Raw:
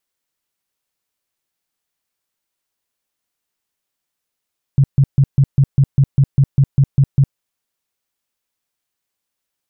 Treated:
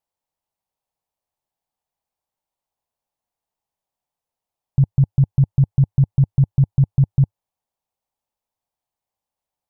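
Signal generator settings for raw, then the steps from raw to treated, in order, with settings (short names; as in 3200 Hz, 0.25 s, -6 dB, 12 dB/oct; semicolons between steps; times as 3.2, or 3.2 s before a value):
tone bursts 137 Hz, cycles 8, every 0.20 s, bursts 13, -7 dBFS
EQ curve 100 Hz 0 dB, 350 Hz -7 dB, 840 Hz +5 dB, 1400 Hz -11 dB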